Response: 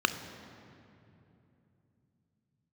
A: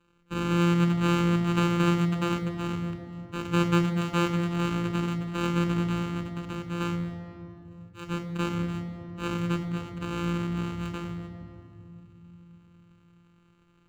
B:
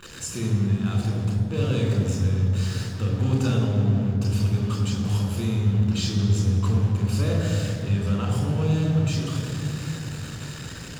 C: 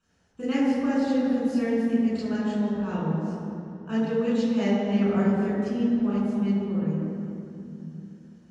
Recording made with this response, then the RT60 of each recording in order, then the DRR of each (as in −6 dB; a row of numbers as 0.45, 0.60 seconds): A; 2.9, 2.9, 2.9 seconds; 9.0, 0.5, −9.5 decibels